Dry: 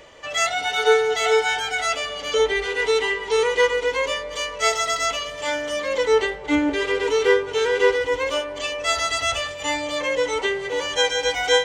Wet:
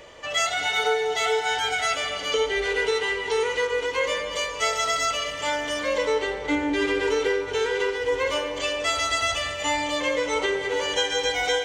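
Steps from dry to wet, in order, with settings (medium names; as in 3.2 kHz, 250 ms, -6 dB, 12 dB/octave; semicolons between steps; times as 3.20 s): compression, threshold -21 dBFS, peak gain reduction 9.5 dB; on a send: reverberation RT60 2.2 s, pre-delay 6 ms, DRR 5.5 dB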